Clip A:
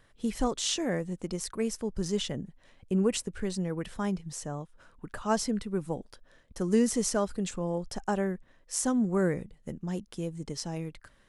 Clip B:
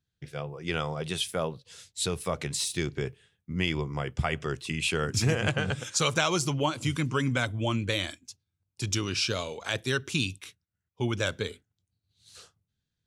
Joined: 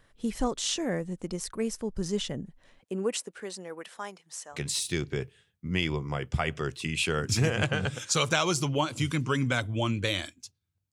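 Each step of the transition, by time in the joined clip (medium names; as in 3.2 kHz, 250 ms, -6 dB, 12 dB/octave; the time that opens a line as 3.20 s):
clip A
2.79–4.59 s: high-pass 270 Hz -> 930 Hz
4.55 s: go over to clip B from 2.40 s, crossfade 0.08 s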